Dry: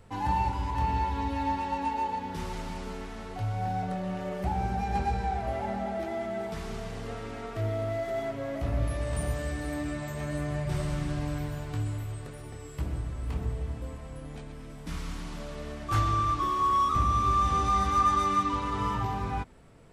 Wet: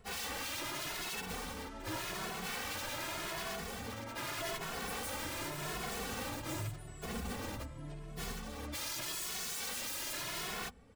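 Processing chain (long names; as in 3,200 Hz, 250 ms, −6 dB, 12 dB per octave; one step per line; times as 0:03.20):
wrap-around overflow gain 30 dB
time stretch by phase vocoder 0.55×
barber-pole flanger 2.3 ms +0.85 Hz
level +1 dB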